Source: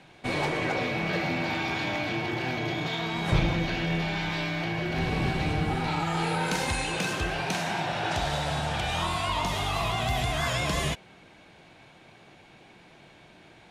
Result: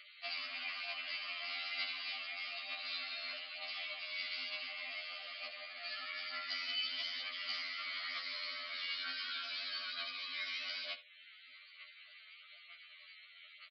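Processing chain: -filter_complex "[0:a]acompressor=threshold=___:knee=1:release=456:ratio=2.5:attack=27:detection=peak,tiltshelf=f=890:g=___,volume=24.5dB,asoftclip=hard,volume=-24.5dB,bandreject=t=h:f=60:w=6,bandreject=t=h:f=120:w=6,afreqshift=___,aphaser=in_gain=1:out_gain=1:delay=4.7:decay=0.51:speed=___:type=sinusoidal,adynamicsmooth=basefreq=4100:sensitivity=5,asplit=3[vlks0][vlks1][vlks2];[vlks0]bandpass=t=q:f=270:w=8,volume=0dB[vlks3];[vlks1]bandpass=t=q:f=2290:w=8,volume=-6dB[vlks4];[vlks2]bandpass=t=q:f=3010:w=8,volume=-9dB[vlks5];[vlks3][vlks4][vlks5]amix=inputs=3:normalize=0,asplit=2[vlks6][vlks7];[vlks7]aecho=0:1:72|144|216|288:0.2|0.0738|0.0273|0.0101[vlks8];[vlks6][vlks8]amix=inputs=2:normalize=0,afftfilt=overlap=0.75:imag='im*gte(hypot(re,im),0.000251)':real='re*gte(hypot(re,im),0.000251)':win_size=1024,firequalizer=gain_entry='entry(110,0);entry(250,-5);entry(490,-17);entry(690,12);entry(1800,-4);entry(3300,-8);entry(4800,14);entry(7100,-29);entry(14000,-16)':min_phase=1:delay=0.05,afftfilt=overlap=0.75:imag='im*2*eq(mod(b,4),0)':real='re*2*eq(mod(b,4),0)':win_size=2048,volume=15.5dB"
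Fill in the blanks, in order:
-43dB, -8, 450, 1.1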